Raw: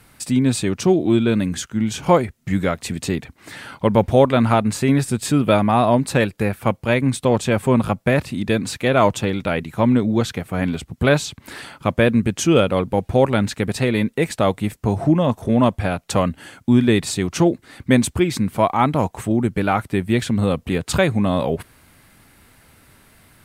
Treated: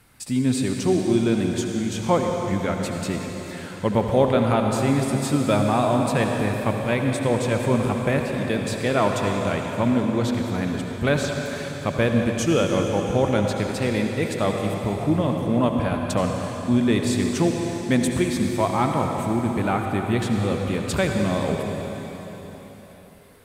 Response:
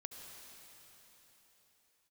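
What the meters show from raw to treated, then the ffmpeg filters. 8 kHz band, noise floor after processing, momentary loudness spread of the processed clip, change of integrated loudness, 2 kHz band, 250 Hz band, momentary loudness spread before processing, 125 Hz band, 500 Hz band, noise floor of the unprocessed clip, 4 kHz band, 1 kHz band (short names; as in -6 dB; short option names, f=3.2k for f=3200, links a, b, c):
-3.5 dB, -39 dBFS, 7 LU, -3.5 dB, -3.5 dB, -3.5 dB, 8 LU, -3.5 dB, -3.5 dB, -55 dBFS, -3.5 dB, -3.5 dB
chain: -filter_complex "[1:a]atrim=start_sample=2205[a];[0:a][a]afir=irnorm=-1:irlink=0"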